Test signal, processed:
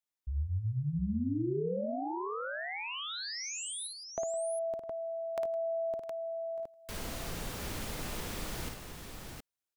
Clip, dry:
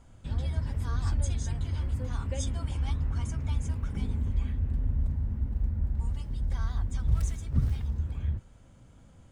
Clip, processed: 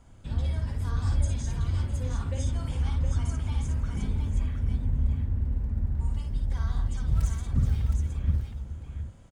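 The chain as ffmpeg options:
ffmpeg -i in.wav -filter_complex "[0:a]acrossover=split=470[link_01][link_02];[link_02]acompressor=threshold=-41dB:ratio=6[link_03];[link_01][link_03]amix=inputs=2:normalize=0,aecho=1:1:55|162|658|716:0.596|0.119|0.133|0.531" out.wav

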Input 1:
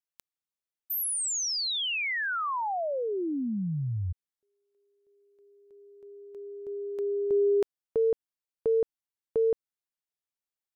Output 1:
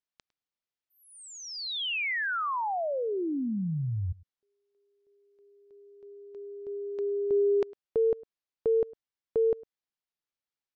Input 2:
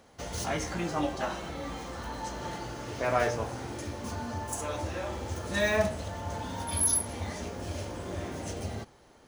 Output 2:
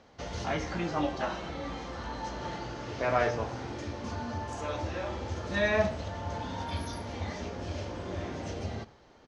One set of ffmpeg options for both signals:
ffmpeg -i in.wav -filter_complex "[0:a]lowpass=frequency=5700:width=0.5412,lowpass=frequency=5700:width=1.3066,acrossover=split=3700[link_01][link_02];[link_02]acompressor=threshold=-46dB:ratio=4:attack=1:release=60[link_03];[link_01][link_03]amix=inputs=2:normalize=0,asplit=2[link_04][link_05];[link_05]adelay=105,volume=-22dB,highshelf=frequency=4000:gain=-2.36[link_06];[link_04][link_06]amix=inputs=2:normalize=0" out.wav

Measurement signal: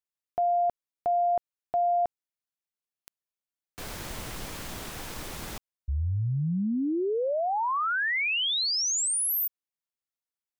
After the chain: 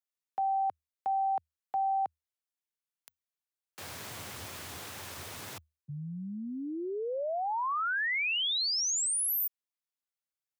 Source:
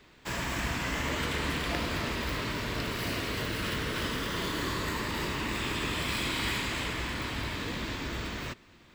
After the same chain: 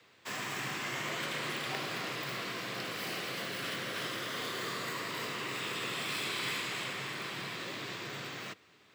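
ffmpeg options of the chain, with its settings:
ffmpeg -i in.wav -af "afreqshift=77,equalizer=frequency=160:width_type=o:width=2.8:gain=-8.5,volume=-3dB" out.wav

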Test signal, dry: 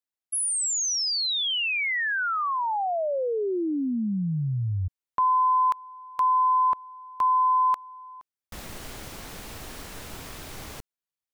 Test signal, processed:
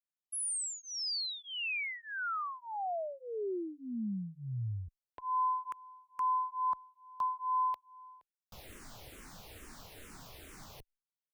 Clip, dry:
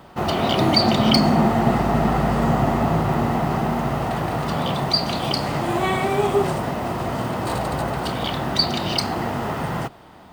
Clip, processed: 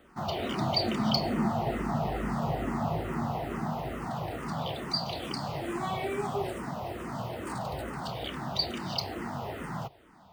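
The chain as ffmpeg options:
ffmpeg -i in.wav -filter_complex "[0:a]asplit=2[link_01][link_02];[link_02]afreqshift=-2.3[link_03];[link_01][link_03]amix=inputs=2:normalize=1,volume=-8.5dB" out.wav

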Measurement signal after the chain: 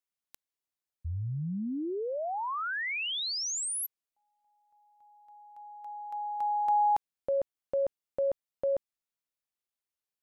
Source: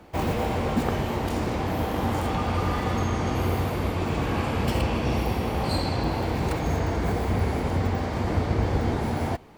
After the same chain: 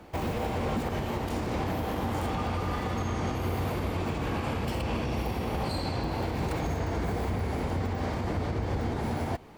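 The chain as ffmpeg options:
ffmpeg -i in.wav -af "alimiter=limit=-21.5dB:level=0:latency=1:release=141" out.wav

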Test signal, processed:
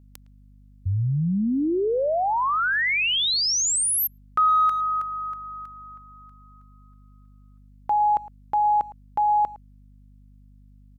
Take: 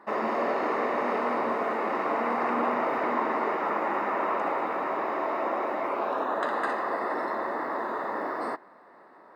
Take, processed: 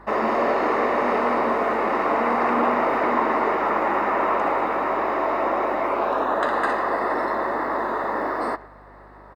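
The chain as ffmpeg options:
ffmpeg -i in.wav -filter_complex "[0:a]acontrast=59,asplit=2[link_01][link_02];[link_02]adelay=110,highpass=300,lowpass=3400,asoftclip=type=hard:threshold=-17.5dB,volume=-19dB[link_03];[link_01][link_03]amix=inputs=2:normalize=0,aeval=exprs='val(0)+0.00316*(sin(2*PI*50*n/s)+sin(2*PI*2*50*n/s)/2+sin(2*PI*3*50*n/s)/3+sin(2*PI*4*50*n/s)/4+sin(2*PI*5*50*n/s)/5)':channel_layout=same" out.wav

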